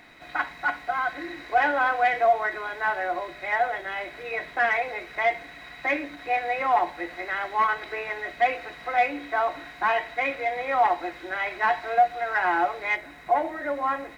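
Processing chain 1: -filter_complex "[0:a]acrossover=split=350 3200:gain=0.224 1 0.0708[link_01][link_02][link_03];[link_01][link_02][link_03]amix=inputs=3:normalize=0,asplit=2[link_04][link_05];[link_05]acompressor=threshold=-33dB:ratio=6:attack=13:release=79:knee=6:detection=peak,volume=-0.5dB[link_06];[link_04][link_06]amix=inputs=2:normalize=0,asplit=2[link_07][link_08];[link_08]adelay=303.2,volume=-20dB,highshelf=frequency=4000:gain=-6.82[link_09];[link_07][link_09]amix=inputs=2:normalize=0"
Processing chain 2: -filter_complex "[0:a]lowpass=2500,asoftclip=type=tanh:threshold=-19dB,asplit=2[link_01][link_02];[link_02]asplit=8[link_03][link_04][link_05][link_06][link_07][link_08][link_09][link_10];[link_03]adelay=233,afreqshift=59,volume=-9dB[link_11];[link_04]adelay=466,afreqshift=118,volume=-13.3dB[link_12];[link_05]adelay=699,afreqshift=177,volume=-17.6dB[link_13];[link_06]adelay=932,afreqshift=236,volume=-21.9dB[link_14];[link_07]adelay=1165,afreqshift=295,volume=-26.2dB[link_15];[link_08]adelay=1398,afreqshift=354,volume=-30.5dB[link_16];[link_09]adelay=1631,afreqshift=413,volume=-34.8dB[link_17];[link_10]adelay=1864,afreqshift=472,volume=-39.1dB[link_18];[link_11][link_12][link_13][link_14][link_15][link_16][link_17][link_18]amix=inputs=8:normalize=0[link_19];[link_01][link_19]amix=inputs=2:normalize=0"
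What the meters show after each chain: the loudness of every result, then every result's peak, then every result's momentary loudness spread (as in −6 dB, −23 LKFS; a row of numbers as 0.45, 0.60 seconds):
−24.0, −28.0 LKFS; −9.5, −15.0 dBFS; 7, 7 LU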